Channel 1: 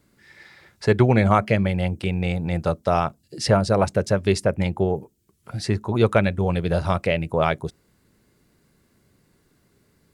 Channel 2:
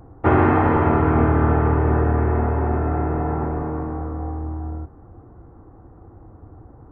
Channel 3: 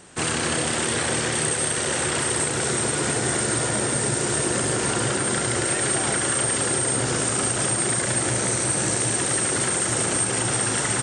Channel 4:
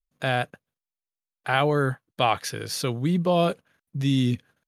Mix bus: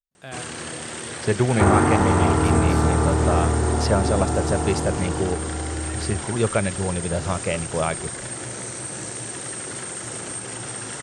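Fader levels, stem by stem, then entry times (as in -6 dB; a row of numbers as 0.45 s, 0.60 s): -3.5 dB, -2.0 dB, -9.0 dB, -13.0 dB; 0.40 s, 1.35 s, 0.15 s, 0.00 s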